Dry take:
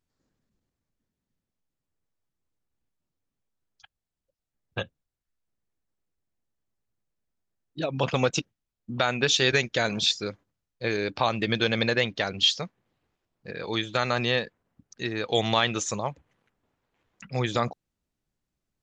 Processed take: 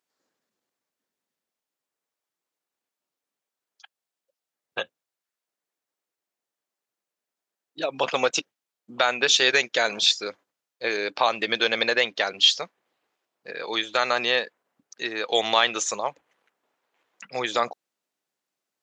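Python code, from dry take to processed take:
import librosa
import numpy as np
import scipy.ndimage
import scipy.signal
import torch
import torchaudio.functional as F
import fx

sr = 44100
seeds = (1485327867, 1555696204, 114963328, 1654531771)

y = scipy.signal.sosfilt(scipy.signal.butter(2, 470.0, 'highpass', fs=sr, output='sos'), x)
y = y * 10.0 ** (4.0 / 20.0)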